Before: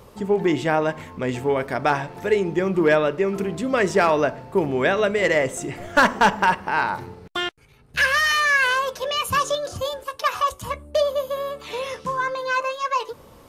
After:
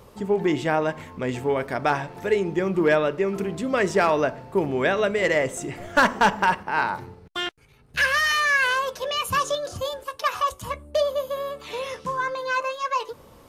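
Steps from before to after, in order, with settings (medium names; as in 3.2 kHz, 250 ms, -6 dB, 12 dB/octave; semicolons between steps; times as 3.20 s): 6.63–7.47 s: three bands expanded up and down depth 40%; trim -2 dB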